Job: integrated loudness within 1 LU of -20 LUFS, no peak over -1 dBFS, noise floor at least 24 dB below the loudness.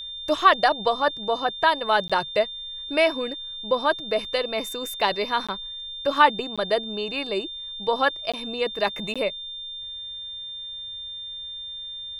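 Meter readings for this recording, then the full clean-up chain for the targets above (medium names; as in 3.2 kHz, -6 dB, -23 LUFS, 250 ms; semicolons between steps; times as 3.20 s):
dropouts 5; longest dropout 16 ms; steady tone 3.6 kHz; tone level -33 dBFS; loudness -25.0 LUFS; peak level -4.5 dBFS; loudness target -20.0 LUFS
-> interpolate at 2.08/5.47/6.56/8.32/9.14 s, 16 ms; band-stop 3.6 kHz, Q 30; trim +5 dB; peak limiter -1 dBFS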